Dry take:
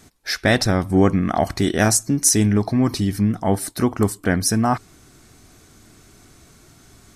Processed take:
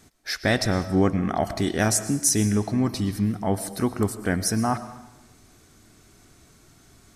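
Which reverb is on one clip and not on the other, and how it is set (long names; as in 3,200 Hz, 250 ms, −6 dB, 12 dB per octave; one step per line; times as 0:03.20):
comb and all-pass reverb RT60 0.98 s, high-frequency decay 0.95×, pre-delay 75 ms, DRR 12.5 dB
level −5 dB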